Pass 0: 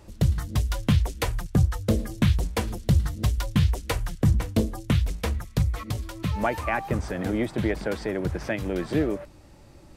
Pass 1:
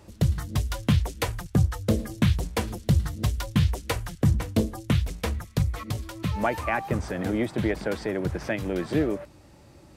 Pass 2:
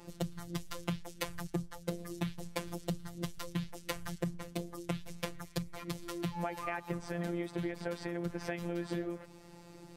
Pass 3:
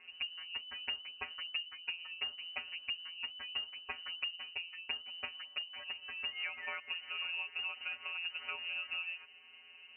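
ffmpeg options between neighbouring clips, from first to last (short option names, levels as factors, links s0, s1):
-af "highpass=61"
-af "acompressor=threshold=0.0224:ratio=6,afftfilt=real='hypot(re,im)*cos(PI*b)':imag='0':win_size=1024:overlap=0.75,volume=1.33"
-af "lowpass=f=2600:t=q:w=0.5098,lowpass=f=2600:t=q:w=0.6013,lowpass=f=2600:t=q:w=0.9,lowpass=f=2600:t=q:w=2.563,afreqshift=-3000,volume=0.668"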